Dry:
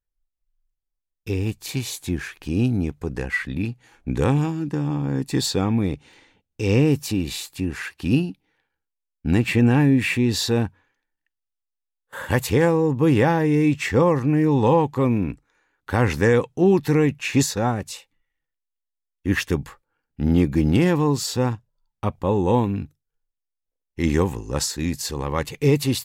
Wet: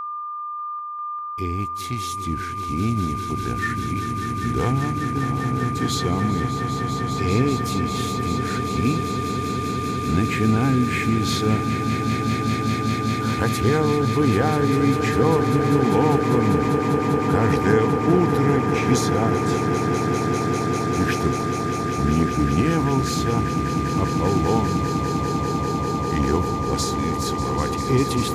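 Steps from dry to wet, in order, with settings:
wrong playback speed 48 kHz file played as 44.1 kHz
steady tone 1,200 Hz −24 dBFS
echo that builds up and dies away 198 ms, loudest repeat 8, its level −10.5 dB
level −3 dB

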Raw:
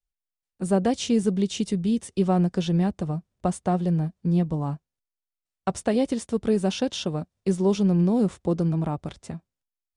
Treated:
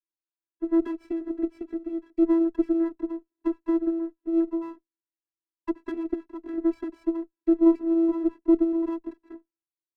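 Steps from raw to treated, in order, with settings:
channel vocoder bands 16, square 331 Hz
elliptic band-pass filter 240–2,100 Hz
windowed peak hold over 9 samples

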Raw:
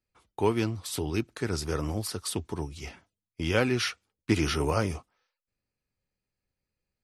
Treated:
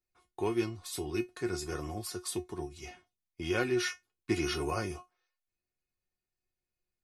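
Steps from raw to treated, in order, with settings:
notch filter 3,100 Hz, Q 12
tuned comb filter 360 Hz, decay 0.16 s, harmonics all, mix 90%
level +6.5 dB

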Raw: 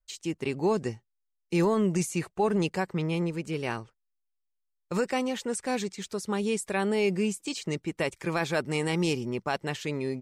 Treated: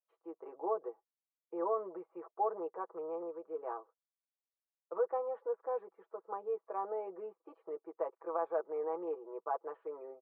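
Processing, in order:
elliptic band-pass filter 420–1,200 Hz, stop band 70 dB
comb filter 6.1 ms, depth 84%
level −7 dB

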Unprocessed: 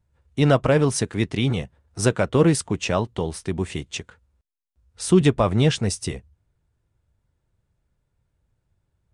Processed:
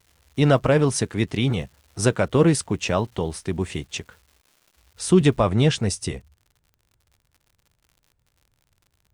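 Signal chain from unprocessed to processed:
surface crackle 380 per second −45 dBFS, from 0:05.44 71 per second

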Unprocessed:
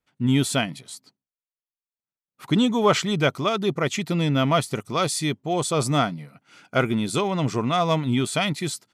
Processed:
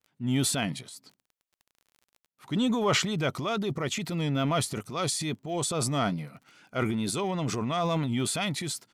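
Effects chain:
pitch vibrato 2.3 Hz 54 cents
transient designer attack −5 dB, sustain +8 dB
surface crackle 23 per second −39 dBFS
level −6 dB

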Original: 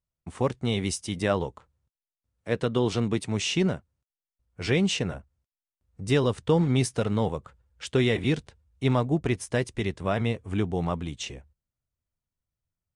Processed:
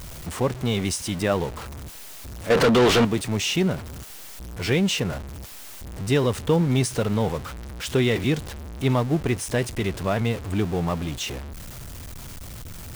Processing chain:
converter with a step at zero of −31 dBFS
0:02.50–0:03.05: mid-hump overdrive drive 35 dB, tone 2,400 Hz, clips at −10.5 dBFS
level +1 dB

